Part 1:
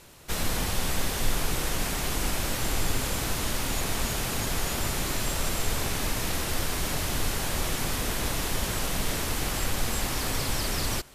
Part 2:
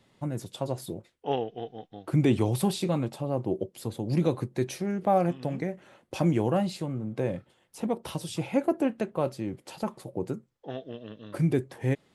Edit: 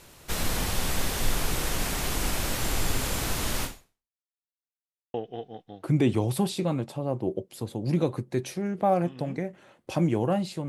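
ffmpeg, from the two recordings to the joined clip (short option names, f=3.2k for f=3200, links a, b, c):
-filter_complex "[0:a]apad=whole_dur=10.68,atrim=end=10.68,asplit=2[a][b];[a]atrim=end=4.2,asetpts=PTS-STARTPTS,afade=t=out:st=3.64:d=0.56:c=exp[c];[b]atrim=start=4.2:end=5.14,asetpts=PTS-STARTPTS,volume=0[d];[1:a]atrim=start=1.38:end=6.92,asetpts=PTS-STARTPTS,afade=t=in:d=0.004:c=hsin[e];[c][d][e]concat=n=3:v=0:a=1"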